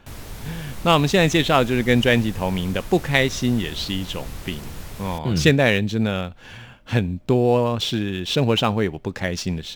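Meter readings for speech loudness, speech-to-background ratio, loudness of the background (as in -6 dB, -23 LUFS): -20.5 LUFS, 17.5 dB, -38.0 LUFS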